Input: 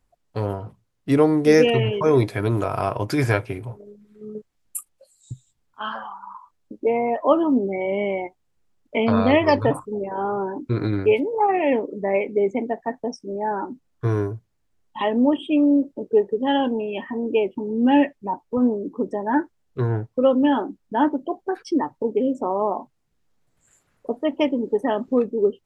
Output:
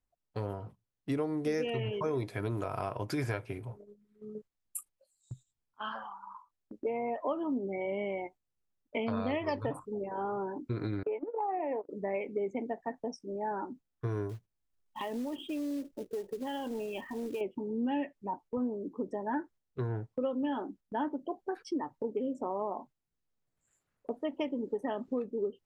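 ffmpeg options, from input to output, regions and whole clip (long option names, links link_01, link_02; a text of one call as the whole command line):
ffmpeg -i in.wav -filter_complex "[0:a]asettb=1/sr,asplit=3[link_01][link_02][link_03];[link_01]atrim=end=11.034[link_04];[link_02]atrim=start=11.03:end=11.89,asetpts=PTS-STARTPTS,afade=type=in:duration=0.004:curve=qsin,afade=type=out:start_time=0.856:duration=0.004:curve=qsin,highpass=310,equalizer=frequency=320:width_type=q:width=4:gain=8,equalizer=frequency=470:width_type=q:width=4:gain=5,equalizer=frequency=720:width_type=q:width=4:gain=9,equalizer=frequency=1000:width_type=q:width=4:gain=9,lowpass=frequency=2100:width=0.5412,lowpass=frequency=2100:width=1.3066,agate=range=-31dB:threshold=-20dB:ratio=16:release=100:detection=peak,acompressor=threshold=-22dB:ratio=3:attack=3.2:release=140:knee=1:detection=peak[link_05];[link_03]atrim=start=11.886[link_06];[link_04][link_05]acrossfade=duration=0.004:curve1=hsin:curve2=qsin[link_07];[link_07][link_06]acrossfade=duration=0.004:curve1=qsin:curve2=hsin,asettb=1/sr,asplit=3[link_08][link_09][link_10];[link_08]atrim=end=14.294[link_11];[link_09]atrim=start=14.29:end=17.41,asetpts=PTS-STARTPTS,afade=type=in:duration=0.004:curve=qsin,afade=type=out:start_time=3.116:duration=0.004:curve=qsin,asubboost=boost=6:cutoff=78,acompressor=threshold=-23dB:ratio=8:attack=3.2:release=140:knee=1:detection=peak,acrusher=bits=5:mode=log:mix=0:aa=0.000001[link_12];[link_10]atrim=start=17.406[link_13];[link_11][link_12]acrossfade=duration=0.004:curve1=hsin:curve2=qsin[link_14];[link_14][link_13]acrossfade=duration=0.004:curve1=qsin:curve2=hsin,agate=range=-7dB:threshold=-42dB:ratio=16:detection=peak,acompressor=threshold=-21dB:ratio=4,volume=-9dB" out.wav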